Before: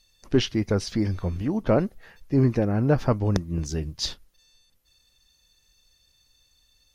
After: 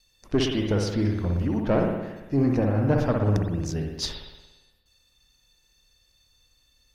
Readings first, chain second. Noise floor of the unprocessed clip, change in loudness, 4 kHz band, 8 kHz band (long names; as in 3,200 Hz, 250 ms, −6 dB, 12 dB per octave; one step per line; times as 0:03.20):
−65 dBFS, 0.0 dB, −1.0 dB, −1.5 dB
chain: tube saturation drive 14 dB, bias 0.4
noise gate with hold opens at −59 dBFS
spring reverb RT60 1.1 s, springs 57 ms, chirp 75 ms, DRR 1 dB